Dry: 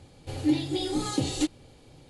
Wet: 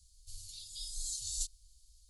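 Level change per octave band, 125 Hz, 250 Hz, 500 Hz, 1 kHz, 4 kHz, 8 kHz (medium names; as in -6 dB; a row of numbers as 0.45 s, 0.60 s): -22.0 dB, under -40 dB, under -40 dB, under -40 dB, -8.5 dB, +1.0 dB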